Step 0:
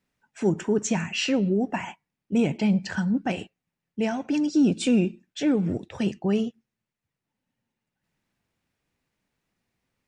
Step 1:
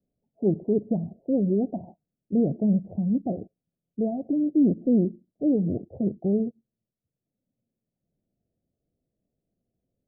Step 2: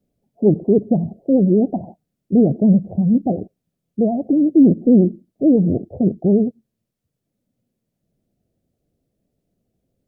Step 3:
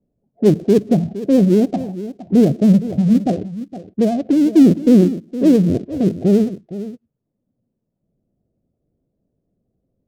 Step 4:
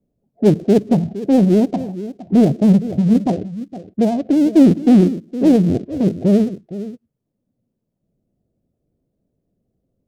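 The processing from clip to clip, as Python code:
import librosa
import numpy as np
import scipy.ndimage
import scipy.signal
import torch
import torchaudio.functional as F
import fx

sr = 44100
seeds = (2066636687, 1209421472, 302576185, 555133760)

y1 = scipy.signal.sosfilt(scipy.signal.butter(12, 700.0, 'lowpass', fs=sr, output='sos'), x)
y2 = fx.vibrato(y1, sr, rate_hz=11.0, depth_cents=89.0)
y2 = y2 * librosa.db_to_amplitude(9.0)
y3 = fx.dead_time(y2, sr, dead_ms=0.12)
y3 = fx.env_lowpass(y3, sr, base_hz=730.0, full_db=-12.0)
y3 = y3 + 10.0 ** (-14.0 / 20.0) * np.pad(y3, (int(464 * sr / 1000.0), 0))[:len(y3)]
y3 = y3 * librosa.db_to_amplitude(1.5)
y4 = fx.doppler_dist(y3, sr, depth_ms=0.32)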